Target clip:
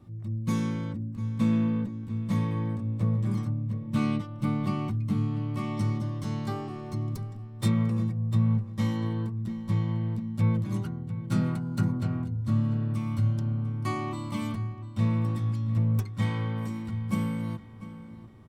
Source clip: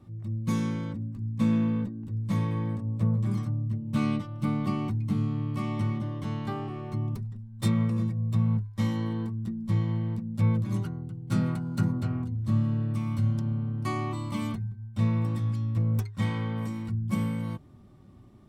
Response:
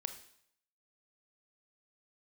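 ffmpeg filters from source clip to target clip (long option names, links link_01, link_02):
-filter_complex "[0:a]asettb=1/sr,asplit=3[link_01][link_02][link_03];[link_01]atrim=end=5.774[link_04];[link_02]atrim=start=5.77:end=7.45,asetpts=PTS-STARTPTS,afade=type=in:duration=0.004:curve=qsin,afade=type=out:start_time=1.676:duration=0.004:curve=qsin,highshelf=frequency=3900:width_type=q:width=1.5:gain=6.5[link_05];[link_03]atrim=start=7.446[link_06];[link_04][link_05]acrossfade=duration=0.004:curve1=hsin:curve2=qsin[link_07];[link_07][link_06]acrossfade=duration=0.004:curve1=qsin:curve2=hsin,asplit=2[link_08][link_09];[link_09]adelay=696,lowpass=frequency=4100:poles=1,volume=-14.5dB,asplit=2[link_10][link_11];[link_11]adelay=696,lowpass=frequency=4100:poles=1,volume=0.48,asplit=2[link_12][link_13];[link_13]adelay=696,lowpass=frequency=4100:poles=1,volume=0.48,asplit=2[link_14][link_15];[link_15]adelay=696,lowpass=frequency=4100:poles=1,volume=0.48[link_16];[link_08][link_10][link_12][link_14][link_16]amix=inputs=5:normalize=0"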